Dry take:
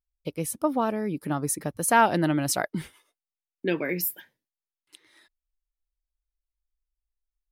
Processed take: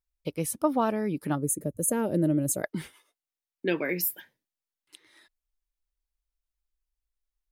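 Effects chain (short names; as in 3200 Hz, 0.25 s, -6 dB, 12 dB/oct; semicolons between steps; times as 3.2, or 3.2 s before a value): 1.35–2.63 spectral gain 630–6300 Hz -18 dB; 2.7–4.13 low shelf 130 Hz -8 dB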